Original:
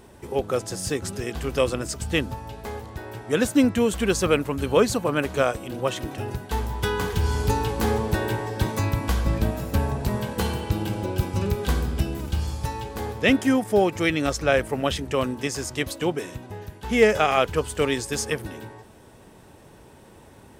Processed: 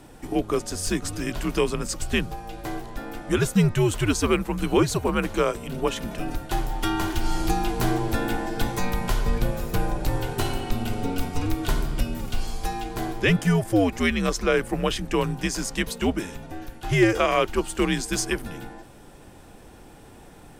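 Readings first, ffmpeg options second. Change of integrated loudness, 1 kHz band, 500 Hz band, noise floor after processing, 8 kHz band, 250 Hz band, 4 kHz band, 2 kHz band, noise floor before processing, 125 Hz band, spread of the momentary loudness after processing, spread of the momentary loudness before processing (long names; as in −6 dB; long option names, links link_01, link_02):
−1.0 dB, −0.5 dB, −2.5 dB, −47 dBFS, +0.5 dB, +0.5 dB, 0.0 dB, −0.5 dB, −49 dBFS, −0.5 dB, 11 LU, 11 LU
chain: -filter_complex "[0:a]afreqshift=-95,asplit=2[link_01][link_02];[link_02]alimiter=limit=-16.5dB:level=0:latency=1:release=442,volume=1.5dB[link_03];[link_01][link_03]amix=inputs=2:normalize=0,volume=-4.5dB"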